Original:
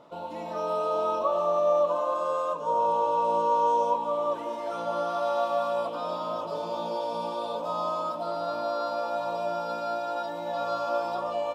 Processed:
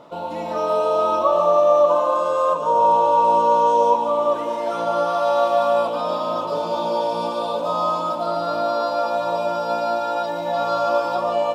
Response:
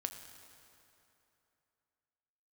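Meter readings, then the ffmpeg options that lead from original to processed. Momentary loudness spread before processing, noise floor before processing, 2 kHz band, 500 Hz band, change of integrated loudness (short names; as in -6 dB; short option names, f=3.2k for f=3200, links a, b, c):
8 LU, -36 dBFS, +8.5 dB, +8.5 dB, +8.5 dB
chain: -filter_complex "[0:a]asplit=2[a][b];[1:a]atrim=start_sample=2205,adelay=146[c];[b][c]afir=irnorm=-1:irlink=0,volume=-8.5dB[d];[a][d]amix=inputs=2:normalize=0,volume=8dB"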